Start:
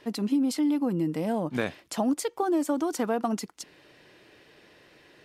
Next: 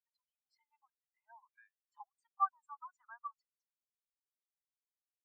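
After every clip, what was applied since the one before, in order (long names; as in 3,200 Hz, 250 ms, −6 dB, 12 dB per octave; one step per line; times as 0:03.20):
Butterworth high-pass 960 Hz 36 dB per octave
brickwall limiter −30 dBFS, peak gain reduction 11 dB
every bin expanded away from the loudest bin 4 to 1
level +9.5 dB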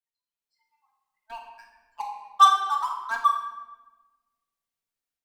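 leveller curve on the samples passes 3
automatic gain control gain up to 9.5 dB
rectangular room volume 830 cubic metres, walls mixed, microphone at 1.7 metres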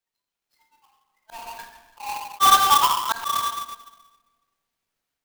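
each half-wave held at its own peak
volume swells 185 ms
converter with an unsteady clock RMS 0.025 ms
level +6.5 dB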